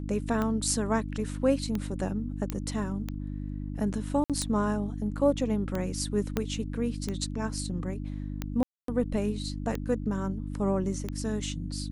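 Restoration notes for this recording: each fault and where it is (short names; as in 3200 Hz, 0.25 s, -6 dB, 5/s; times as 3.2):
hum 50 Hz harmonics 6 -35 dBFS
tick 45 rpm -18 dBFS
2.5 pop -16 dBFS
4.24–4.3 gap 57 ms
6.37 pop -13 dBFS
8.63–8.88 gap 0.253 s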